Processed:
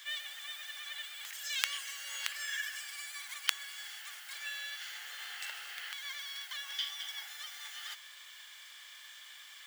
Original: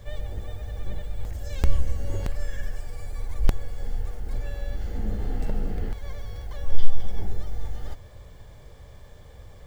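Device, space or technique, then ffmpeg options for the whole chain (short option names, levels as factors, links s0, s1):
headphones lying on a table: -af "highpass=f=1500:w=0.5412,highpass=f=1500:w=1.3066,equalizer=f=3100:t=o:w=0.39:g=6.5,volume=2.66"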